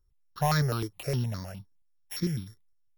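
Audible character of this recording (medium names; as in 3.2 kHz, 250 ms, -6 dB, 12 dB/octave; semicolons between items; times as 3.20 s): a buzz of ramps at a fixed pitch in blocks of 8 samples; tremolo saw up 1.1 Hz, depth 35%; notches that jump at a steady rate 9.7 Hz 700–2800 Hz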